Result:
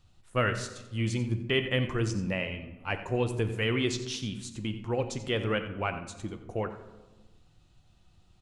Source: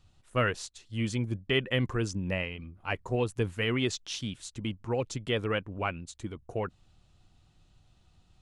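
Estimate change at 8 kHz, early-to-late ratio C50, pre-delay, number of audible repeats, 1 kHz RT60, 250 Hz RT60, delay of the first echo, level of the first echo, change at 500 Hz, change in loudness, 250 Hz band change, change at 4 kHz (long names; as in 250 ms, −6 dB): +0.5 dB, 9.5 dB, 6 ms, 1, 1.1 s, 1.7 s, 89 ms, −14.0 dB, +1.0 dB, +1.0 dB, +1.0 dB, +0.5 dB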